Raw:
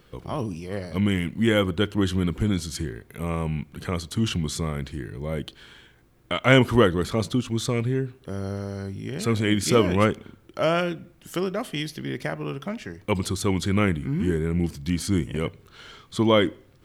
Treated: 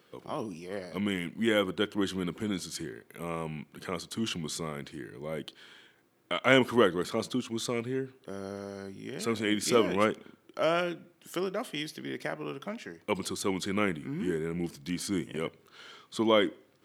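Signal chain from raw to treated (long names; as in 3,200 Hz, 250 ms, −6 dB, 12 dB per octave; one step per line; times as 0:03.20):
high-pass filter 230 Hz 12 dB per octave
level −4.5 dB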